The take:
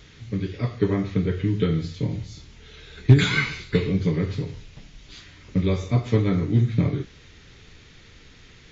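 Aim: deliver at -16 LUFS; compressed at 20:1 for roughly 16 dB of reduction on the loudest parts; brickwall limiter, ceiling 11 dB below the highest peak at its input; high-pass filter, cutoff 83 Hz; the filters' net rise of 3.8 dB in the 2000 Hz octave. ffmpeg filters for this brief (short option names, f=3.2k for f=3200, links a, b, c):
-af "highpass=83,equalizer=f=2k:t=o:g=4.5,acompressor=threshold=-23dB:ratio=20,volume=18dB,alimiter=limit=-5dB:level=0:latency=1"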